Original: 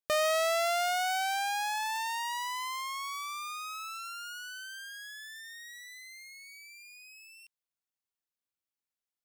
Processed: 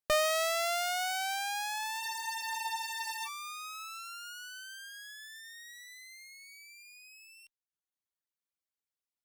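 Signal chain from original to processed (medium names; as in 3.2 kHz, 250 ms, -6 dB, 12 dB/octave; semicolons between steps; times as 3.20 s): Chebyshev shaper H 2 -9 dB, 3 -23 dB, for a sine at -22 dBFS; reverb removal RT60 1.2 s; spectral freeze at 2.03 s, 1.23 s; trim +1 dB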